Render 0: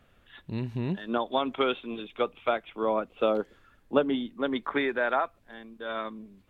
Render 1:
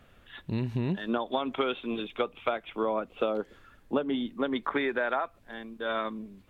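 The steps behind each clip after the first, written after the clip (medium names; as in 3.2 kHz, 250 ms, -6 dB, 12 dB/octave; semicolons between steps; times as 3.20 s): compression 6:1, threshold -29 dBFS, peak gain reduction 11 dB; trim +4 dB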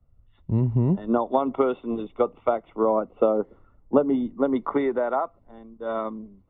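Savitzky-Golay filter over 65 samples; three bands expanded up and down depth 70%; trim +7 dB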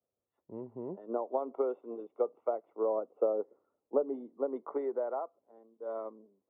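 ladder band-pass 560 Hz, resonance 35%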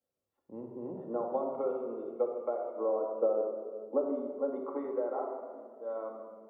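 simulated room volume 2600 m³, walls mixed, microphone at 2.2 m; trim -2.5 dB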